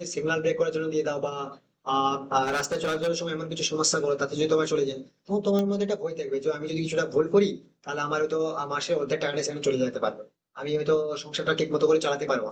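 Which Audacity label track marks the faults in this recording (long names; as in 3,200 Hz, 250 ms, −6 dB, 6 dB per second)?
2.430000	3.090000	clipping −23.5 dBFS
5.590000	5.590000	click −15 dBFS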